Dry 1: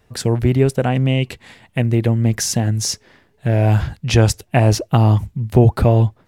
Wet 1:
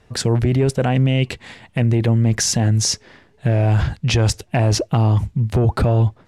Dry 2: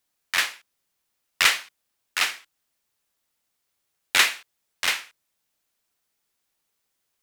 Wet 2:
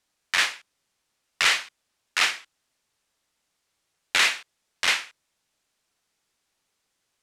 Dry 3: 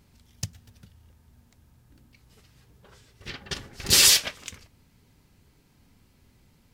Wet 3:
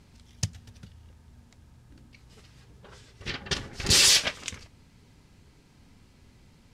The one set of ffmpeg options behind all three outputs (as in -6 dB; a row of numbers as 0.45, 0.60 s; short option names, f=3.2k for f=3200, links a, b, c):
-af "asoftclip=type=tanh:threshold=-3.5dB,lowpass=8.7k,alimiter=limit=-14dB:level=0:latency=1:release=11,volume=4dB"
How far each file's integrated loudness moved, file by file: -1.0, 0.0, -4.0 LU